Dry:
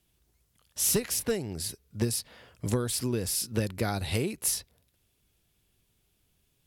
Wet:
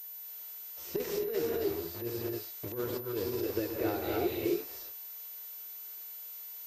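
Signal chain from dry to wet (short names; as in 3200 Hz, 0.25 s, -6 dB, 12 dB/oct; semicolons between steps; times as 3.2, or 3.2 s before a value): bit-crush 7-bit; added noise blue -46 dBFS; de-esser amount 80%; flange 0.39 Hz, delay 7.8 ms, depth 5.4 ms, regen +55%; non-linear reverb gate 0.32 s rising, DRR -1.5 dB; 0.96–3.51 negative-ratio compressor -34 dBFS, ratio -1; resonant low shelf 270 Hz -7.5 dB, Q 3; pulse-width modulation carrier 14000 Hz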